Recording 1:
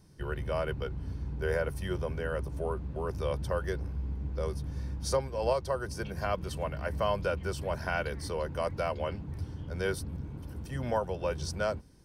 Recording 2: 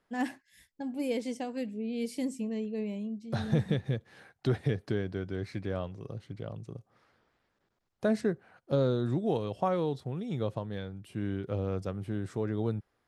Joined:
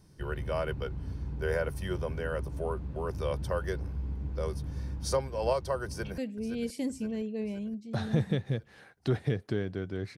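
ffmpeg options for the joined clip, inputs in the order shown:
-filter_complex "[0:a]apad=whole_dur=10.17,atrim=end=10.17,atrim=end=6.182[s0];[1:a]atrim=start=1.568:end=5.56[s1];[s0][s1]acrossfade=d=0.004:c1=hsin:c2=hsin,asplit=2[s2][s3];[s3]afade=t=in:st=5.85:d=0.01,afade=t=out:st=6.18:d=0.01,aecho=0:1:520|1040|1560|2080|2600|3120|3640:0.298538|0.179123|0.107474|0.0644843|0.0386906|0.0232143|0.0139286[s4];[s2][s4]amix=inputs=2:normalize=0"

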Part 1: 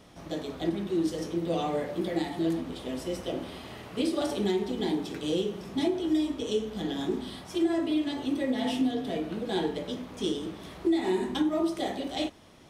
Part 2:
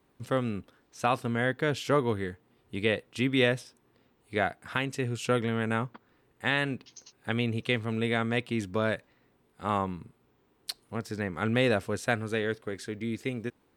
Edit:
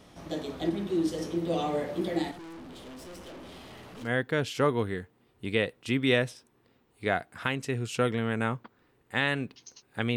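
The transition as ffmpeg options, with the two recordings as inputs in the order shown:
-filter_complex "[0:a]asettb=1/sr,asplit=3[s0][s1][s2];[s0]atrim=end=2.314[s3];[s1]atrim=start=2.31:end=4.12,asetpts=PTS-STARTPTS,afade=t=in:d=0.004:c=qsin,afade=t=out:st=1.806:d=0.004:c=qsin,aeval=exprs='(tanh(141*val(0)+0.2)-tanh(0.2))/141':c=same[s4];[s2]atrim=start=4.116[s5];[s3][s4]acrossfade=d=0.004:c1=hsin:c2=qsin[s6];[s6][s5]acrossfade=d=0.004:c1=qsin:c2=hsin,apad=whole_dur=10.16,atrim=end=10.16,atrim=end=4.12,asetpts=PTS-STARTPTS[s7];[1:a]atrim=start=1.3:end=7.46,asetpts=PTS-STARTPTS[s8];[s7][s8]acrossfade=d=0.12:c1=tri:c2=tri"

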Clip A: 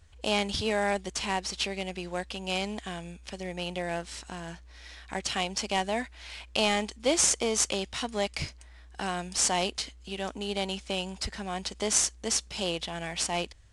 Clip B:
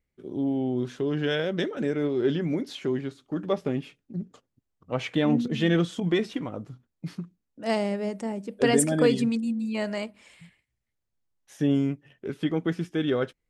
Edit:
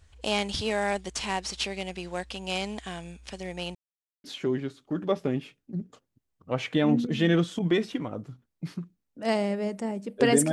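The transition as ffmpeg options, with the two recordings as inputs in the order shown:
-filter_complex "[0:a]apad=whole_dur=10.52,atrim=end=10.52,asplit=2[s0][s1];[s0]atrim=end=3.75,asetpts=PTS-STARTPTS,afade=t=out:st=3.746:d=0.004:c=hsin[s2];[s1]atrim=start=3.75:end=4.24,asetpts=PTS-STARTPTS,volume=0[s3];[1:a]atrim=start=2.65:end=8.93,asetpts=PTS-STARTPTS,afade=t=in:d=0.004:c=hsin[s4];[s2][s3][s4]concat=n=3:v=0:a=1"

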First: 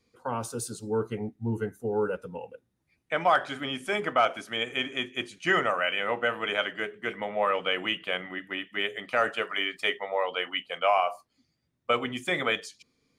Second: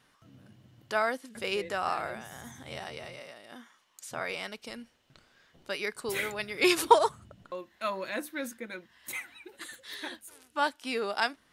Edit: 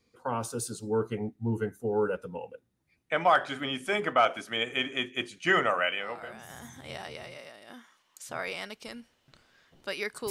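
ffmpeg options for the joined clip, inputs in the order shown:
-filter_complex "[0:a]apad=whole_dur=10.3,atrim=end=10.3,atrim=end=6.5,asetpts=PTS-STARTPTS[s0];[1:a]atrim=start=1.66:end=6.12,asetpts=PTS-STARTPTS[s1];[s0][s1]acrossfade=d=0.66:c1=qua:c2=qua"

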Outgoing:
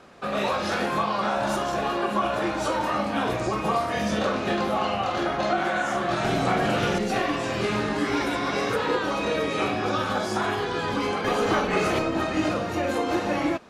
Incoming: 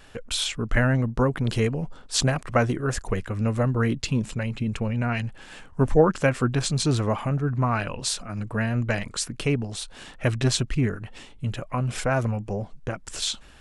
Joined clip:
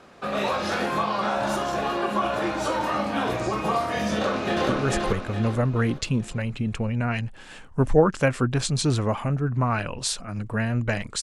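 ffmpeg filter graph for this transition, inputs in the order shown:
-filter_complex "[0:a]apad=whole_dur=11.22,atrim=end=11.22,atrim=end=4.692[s0];[1:a]atrim=start=2.698:end=9.23[s1];[s0][s1]acrossfade=d=0.004:c1=hsin:c2=hsin,asplit=2[s2][s3];[s3]afade=t=in:st=4.13:d=0.01,afade=t=out:st=4.69:d=0.01,aecho=0:1:430|860|1290|1720|2150:0.841395|0.336558|0.134623|0.0538493|0.0215397[s4];[s2][s4]amix=inputs=2:normalize=0"

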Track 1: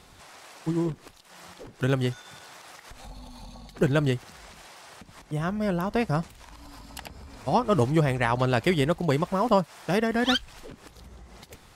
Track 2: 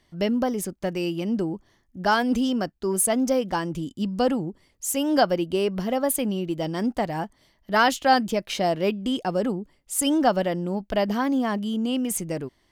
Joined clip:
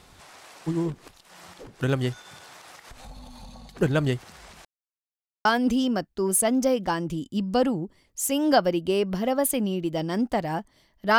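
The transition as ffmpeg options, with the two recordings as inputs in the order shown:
-filter_complex "[0:a]apad=whole_dur=11.18,atrim=end=11.18,asplit=2[s0][s1];[s0]atrim=end=4.65,asetpts=PTS-STARTPTS,afade=t=out:st=4.646:d=0.004:c=hsin[s2];[s1]atrim=start=4.65:end=5.45,asetpts=PTS-STARTPTS,volume=0[s3];[1:a]atrim=start=2.1:end=7.83,asetpts=PTS-STARTPTS,afade=t=in:d=0.004:c=hsin[s4];[s2][s3][s4]concat=n=3:v=0:a=1"

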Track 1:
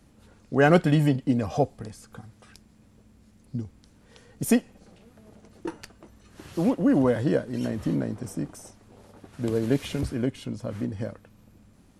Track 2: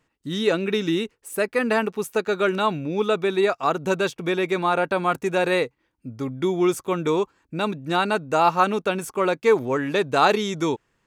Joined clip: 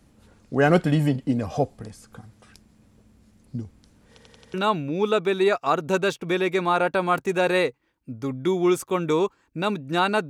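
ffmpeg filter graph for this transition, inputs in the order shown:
-filter_complex "[0:a]apad=whole_dur=10.29,atrim=end=10.29,asplit=5[s0][s1][s2][s3][s4];[s0]atrim=end=4.182[s5];[s1]atrim=start=4.088:end=4.182[s6];[s2]atrim=start=4.088:end=4.182[s7];[s3]atrim=start=4.088:end=4.182[s8];[s4]atrim=start=4.088:end=4.182[s9];[1:a]atrim=start=2.508:end=8.26[s10];[s5][s6]acrossfade=d=0.004:c1=hsin:c2=hsin[s11];[s11][s7]acrossfade=d=0.004:c1=hsin:c2=hsin[s12];[s12][s8]acrossfade=d=0.004:c1=hsin:c2=hsin[s13];[s13][s9]acrossfade=d=0.004:c1=hsin:c2=hsin[s14];[s14][s10]acrossfade=d=0.004:c1=hsin:c2=hsin"

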